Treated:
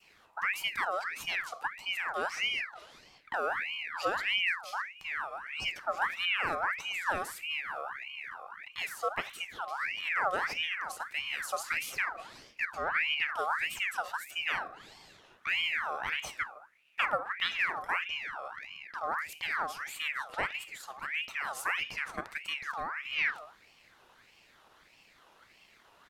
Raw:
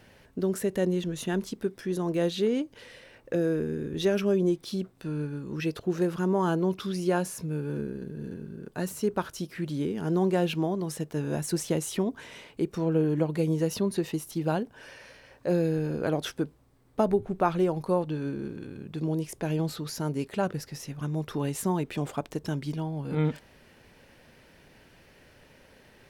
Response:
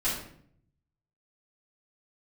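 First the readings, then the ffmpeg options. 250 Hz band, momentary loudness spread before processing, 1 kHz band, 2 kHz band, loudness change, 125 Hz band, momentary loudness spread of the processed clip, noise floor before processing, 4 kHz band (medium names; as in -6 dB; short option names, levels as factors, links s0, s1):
-27.0 dB, 11 LU, +1.5 dB, +11.5 dB, -3.5 dB, -28.5 dB, 10 LU, -58 dBFS, +6.0 dB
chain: -filter_complex "[0:a]aresample=32000,aresample=44100,adynamicequalizer=threshold=0.0112:dfrequency=860:dqfactor=0.72:tfrequency=860:tqfactor=0.72:attack=5:release=100:ratio=0.375:range=2:mode=cutabove:tftype=bell,asplit=2[s0][s1];[1:a]atrim=start_sample=2205,afade=t=out:st=0.28:d=0.01,atrim=end_sample=12789[s2];[s1][s2]afir=irnorm=-1:irlink=0,volume=0.133[s3];[s0][s3]amix=inputs=2:normalize=0,aeval=exprs='val(0)*sin(2*PI*1800*n/s+1800*0.5/1.6*sin(2*PI*1.6*n/s))':c=same,volume=0.631"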